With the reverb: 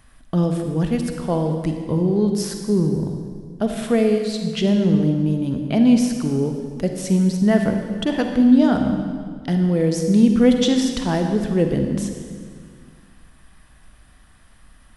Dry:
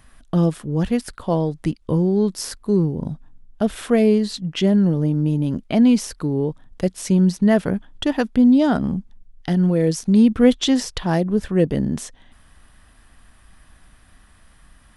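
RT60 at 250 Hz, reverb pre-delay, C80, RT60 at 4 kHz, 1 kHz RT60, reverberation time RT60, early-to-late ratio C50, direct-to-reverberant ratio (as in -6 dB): 2.3 s, 37 ms, 6.5 dB, 1.6 s, 1.7 s, 1.9 s, 5.0 dB, 4.5 dB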